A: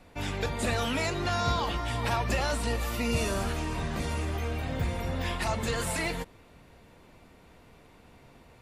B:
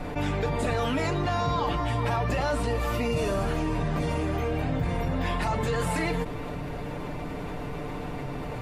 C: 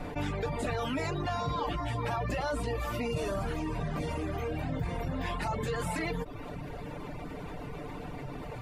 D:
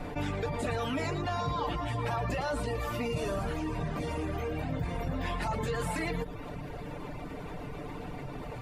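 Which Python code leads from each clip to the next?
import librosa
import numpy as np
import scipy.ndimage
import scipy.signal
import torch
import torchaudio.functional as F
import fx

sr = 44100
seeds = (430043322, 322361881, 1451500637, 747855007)

y1 = fx.high_shelf(x, sr, hz=2200.0, db=-11.5)
y1 = y1 + 0.53 * np.pad(y1, (int(6.8 * sr / 1000.0), 0))[:len(y1)]
y1 = fx.env_flatten(y1, sr, amount_pct=70)
y2 = fx.dereverb_blind(y1, sr, rt60_s=0.74)
y2 = y2 * 10.0 ** (-4.0 / 20.0)
y3 = y2 + 10.0 ** (-12.0 / 20.0) * np.pad(y2, (int(113 * sr / 1000.0), 0))[:len(y2)]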